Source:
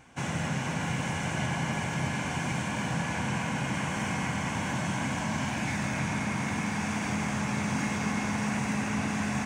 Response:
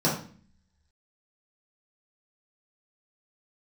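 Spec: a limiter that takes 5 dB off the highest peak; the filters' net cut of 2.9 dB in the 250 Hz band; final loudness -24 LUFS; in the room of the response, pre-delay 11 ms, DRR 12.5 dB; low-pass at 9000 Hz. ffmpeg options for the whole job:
-filter_complex "[0:a]lowpass=9k,equalizer=f=250:t=o:g=-4,alimiter=limit=-23.5dB:level=0:latency=1,asplit=2[a][b];[1:a]atrim=start_sample=2205,adelay=11[c];[b][c]afir=irnorm=-1:irlink=0,volume=-26dB[d];[a][d]amix=inputs=2:normalize=0,volume=8dB"

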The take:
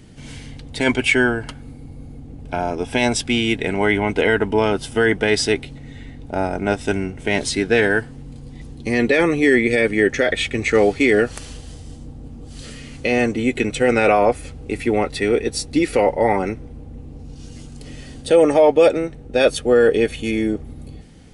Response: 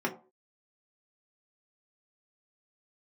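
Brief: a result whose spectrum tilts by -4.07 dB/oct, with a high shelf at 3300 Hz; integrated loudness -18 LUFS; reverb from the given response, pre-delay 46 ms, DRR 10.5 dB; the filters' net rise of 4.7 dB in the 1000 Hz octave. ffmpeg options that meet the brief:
-filter_complex "[0:a]equalizer=f=1k:t=o:g=7,highshelf=f=3.3k:g=-4,asplit=2[a][b];[1:a]atrim=start_sample=2205,adelay=46[c];[b][c]afir=irnorm=-1:irlink=0,volume=-18.5dB[d];[a][d]amix=inputs=2:normalize=0,volume=-1.5dB"

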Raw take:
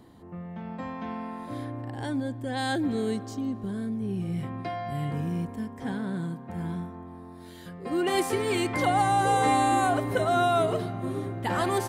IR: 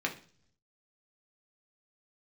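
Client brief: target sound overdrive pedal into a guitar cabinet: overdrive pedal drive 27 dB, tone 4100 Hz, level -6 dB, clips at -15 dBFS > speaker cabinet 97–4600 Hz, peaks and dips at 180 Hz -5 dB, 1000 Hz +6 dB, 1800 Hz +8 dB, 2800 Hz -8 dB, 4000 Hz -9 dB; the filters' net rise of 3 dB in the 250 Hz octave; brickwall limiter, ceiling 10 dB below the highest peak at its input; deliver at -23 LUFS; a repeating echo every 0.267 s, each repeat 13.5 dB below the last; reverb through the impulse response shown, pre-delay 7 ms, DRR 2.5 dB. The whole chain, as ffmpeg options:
-filter_complex "[0:a]equalizer=f=250:t=o:g=5,alimiter=limit=-21.5dB:level=0:latency=1,aecho=1:1:267|534:0.211|0.0444,asplit=2[a][b];[1:a]atrim=start_sample=2205,adelay=7[c];[b][c]afir=irnorm=-1:irlink=0,volume=-9dB[d];[a][d]amix=inputs=2:normalize=0,asplit=2[e][f];[f]highpass=f=720:p=1,volume=27dB,asoftclip=type=tanh:threshold=-15dB[g];[e][g]amix=inputs=2:normalize=0,lowpass=f=4.1k:p=1,volume=-6dB,highpass=97,equalizer=f=180:t=q:w=4:g=-5,equalizer=f=1k:t=q:w=4:g=6,equalizer=f=1.8k:t=q:w=4:g=8,equalizer=f=2.8k:t=q:w=4:g=-8,equalizer=f=4k:t=q:w=4:g=-9,lowpass=f=4.6k:w=0.5412,lowpass=f=4.6k:w=1.3066,volume=-1.5dB"

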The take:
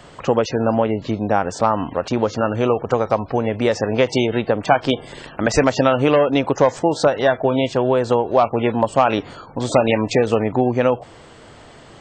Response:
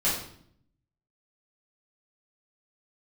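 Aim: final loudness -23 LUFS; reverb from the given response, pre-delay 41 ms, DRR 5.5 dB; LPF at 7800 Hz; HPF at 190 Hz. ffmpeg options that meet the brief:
-filter_complex "[0:a]highpass=190,lowpass=7.8k,asplit=2[a][b];[1:a]atrim=start_sample=2205,adelay=41[c];[b][c]afir=irnorm=-1:irlink=0,volume=-16.5dB[d];[a][d]amix=inputs=2:normalize=0,volume=-5dB"

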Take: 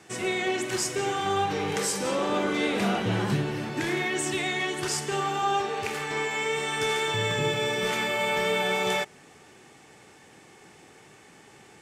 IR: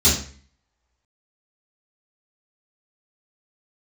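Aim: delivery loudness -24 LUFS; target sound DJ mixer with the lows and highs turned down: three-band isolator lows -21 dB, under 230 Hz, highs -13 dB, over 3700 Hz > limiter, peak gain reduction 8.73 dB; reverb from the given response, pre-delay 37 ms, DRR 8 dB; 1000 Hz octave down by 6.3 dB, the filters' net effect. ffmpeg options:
-filter_complex "[0:a]equalizer=f=1k:t=o:g=-8.5,asplit=2[a][b];[1:a]atrim=start_sample=2205,adelay=37[c];[b][c]afir=irnorm=-1:irlink=0,volume=-25.5dB[d];[a][d]amix=inputs=2:normalize=0,acrossover=split=230 3700:gain=0.0891 1 0.224[e][f][g];[e][f][g]amix=inputs=3:normalize=0,volume=9.5dB,alimiter=limit=-16.5dB:level=0:latency=1"

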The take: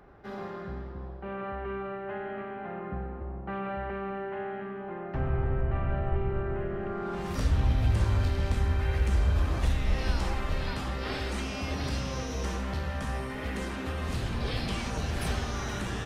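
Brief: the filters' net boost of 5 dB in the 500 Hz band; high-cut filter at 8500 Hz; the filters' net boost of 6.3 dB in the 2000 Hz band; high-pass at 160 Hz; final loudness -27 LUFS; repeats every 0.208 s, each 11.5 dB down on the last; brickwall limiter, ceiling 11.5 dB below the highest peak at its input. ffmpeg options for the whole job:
-af "highpass=160,lowpass=8.5k,equalizer=f=500:t=o:g=6.5,equalizer=f=2k:t=o:g=7.5,alimiter=level_in=5dB:limit=-24dB:level=0:latency=1,volume=-5dB,aecho=1:1:208|416|624:0.266|0.0718|0.0194,volume=10dB"

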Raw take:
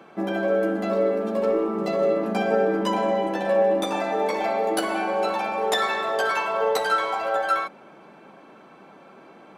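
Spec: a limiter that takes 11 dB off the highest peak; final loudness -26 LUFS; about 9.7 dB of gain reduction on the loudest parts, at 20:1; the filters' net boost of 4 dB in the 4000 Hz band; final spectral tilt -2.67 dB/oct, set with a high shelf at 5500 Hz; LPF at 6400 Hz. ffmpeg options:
-af "lowpass=6.4k,equalizer=f=4k:t=o:g=3.5,highshelf=f=5.5k:g=5,acompressor=threshold=-26dB:ratio=20,volume=10dB,alimiter=limit=-18.5dB:level=0:latency=1"

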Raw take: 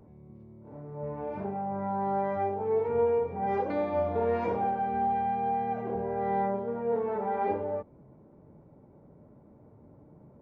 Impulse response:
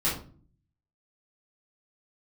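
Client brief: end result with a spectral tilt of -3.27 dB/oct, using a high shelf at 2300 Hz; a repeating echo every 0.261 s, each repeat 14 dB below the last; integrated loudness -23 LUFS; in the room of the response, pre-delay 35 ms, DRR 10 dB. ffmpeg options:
-filter_complex "[0:a]highshelf=f=2.3k:g=7,aecho=1:1:261|522:0.2|0.0399,asplit=2[a][b];[1:a]atrim=start_sample=2205,adelay=35[c];[b][c]afir=irnorm=-1:irlink=0,volume=-20dB[d];[a][d]amix=inputs=2:normalize=0,volume=5.5dB"

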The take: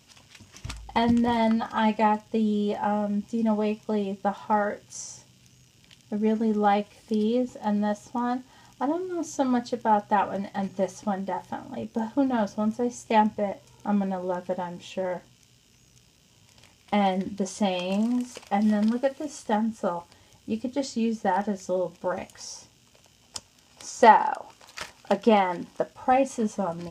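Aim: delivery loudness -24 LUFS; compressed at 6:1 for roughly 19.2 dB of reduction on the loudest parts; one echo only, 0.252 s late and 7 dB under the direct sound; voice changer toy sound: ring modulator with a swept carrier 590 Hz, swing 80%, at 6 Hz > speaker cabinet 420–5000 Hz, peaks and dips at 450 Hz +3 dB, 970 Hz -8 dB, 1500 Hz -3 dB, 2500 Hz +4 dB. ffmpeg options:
-af "acompressor=threshold=-31dB:ratio=6,aecho=1:1:252:0.447,aeval=exprs='val(0)*sin(2*PI*590*n/s+590*0.8/6*sin(2*PI*6*n/s))':c=same,highpass=420,equalizer=f=450:t=q:w=4:g=3,equalizer=f=970:t=q:w=4:g=-8,equalizer=f=1.5k:t=q:w=4:g=-3,equalizer=f=2.5k:t=q:w=4:g=4,lowpass=f=5k:w=0.5412,lowpass=f=5k:w=1.3066,volume=17dB"

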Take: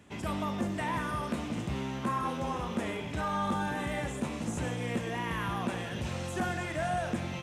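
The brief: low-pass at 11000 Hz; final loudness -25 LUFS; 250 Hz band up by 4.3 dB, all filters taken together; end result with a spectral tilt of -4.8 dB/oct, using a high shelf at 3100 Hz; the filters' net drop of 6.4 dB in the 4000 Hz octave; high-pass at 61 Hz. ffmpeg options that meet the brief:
-af "highpass=61,lowpass=11k,equalizer=f=250:t=o:g=5.5,highshelf=f=3.1k:g=-4,equalizer=f=4k:t=o:g=-6,volume=7dB"

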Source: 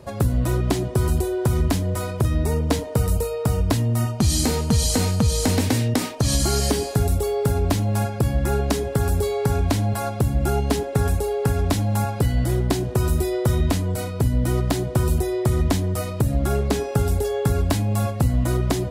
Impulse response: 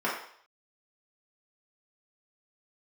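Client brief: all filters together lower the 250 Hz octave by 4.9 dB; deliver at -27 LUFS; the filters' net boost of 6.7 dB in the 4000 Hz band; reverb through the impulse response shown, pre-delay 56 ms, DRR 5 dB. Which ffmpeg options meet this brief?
-filter_complex "[0:a]equalizer=f=250:t=o:g=-7,equalizer=f=4k:t=o:g=8,asplit=2[a][b];[1:a]atrim=start_sample=2205,adelay=56[c];[b][c]afir=irnorm=-1:irlink=0,volume=-16.5dB[d];[a][d]amix=inputs=2:normalize=0,volume=-5dB"

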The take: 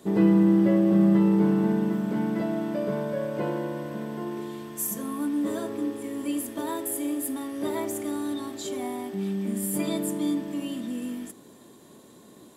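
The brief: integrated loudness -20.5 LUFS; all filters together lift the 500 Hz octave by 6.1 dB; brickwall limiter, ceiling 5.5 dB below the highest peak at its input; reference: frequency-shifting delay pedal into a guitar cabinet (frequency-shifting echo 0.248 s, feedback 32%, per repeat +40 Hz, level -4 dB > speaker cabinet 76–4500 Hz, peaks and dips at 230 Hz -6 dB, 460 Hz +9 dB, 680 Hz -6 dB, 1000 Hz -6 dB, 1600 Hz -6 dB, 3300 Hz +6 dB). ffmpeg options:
-filter_complex "[0:a]equalizer=f=500:t=o:g=4,alimiter=limit=-14dB:level=0:latency=1,asplit=5[a][b][c][d][e];[b]adelay=248,afreqshift=40,volume=-4dB[f];[c]adelay=496,afreqshift=80,volume=-13.9dB[g];[d]adelay=744,afreqshift=120,volume=-23.8dB[h];[e]adelay=992,afreqshift=160,volume=-33.7dB[i];[a][f][g][h][i]amix=inputs=5:normalize=0,highpass=76,equalizer=f=230:t=q:w=4:g=-6,equalizer=f=460:t=q:w=4:g=9,equalizer=f=680:t=q:w=4:g=-6,equalizer=f=1k:t=q:w=4:g=-6,equalizer=f=1.6k:t=q:w=4:g=-6,equalizer=f=3.3k:t=q:w=4:g=6,lowpass=f=4.5k:w=0.5412,lowpass=f=4.5k:w=1.3066,volume=4.5dB"

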